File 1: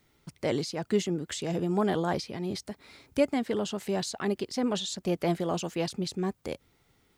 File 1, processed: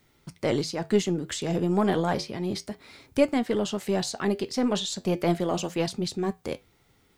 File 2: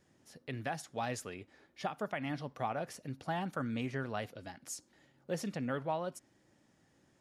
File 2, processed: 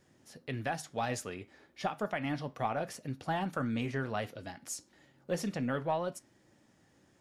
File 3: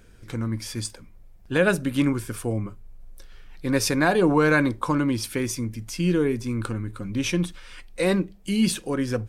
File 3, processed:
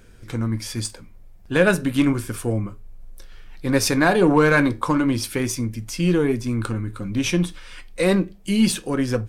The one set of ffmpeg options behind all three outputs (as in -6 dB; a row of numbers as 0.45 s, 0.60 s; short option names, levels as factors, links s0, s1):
-af "flanger=delay=7.7:depth=3.8:regen=-75:speed=0.33:shape=triangular,aeval=exprs='0.251*(cos(1*acos(clip(val(0)/0.251,-1,1)))-cos(1*PI/2))+0.00562*(cos(8*acos(clip(val(0)/0.251,-1,1)))-cos(8*PI/2))':c=same,volume=2.37"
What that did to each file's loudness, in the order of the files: +3.5 LU, +3.0 LU, +3.0 LU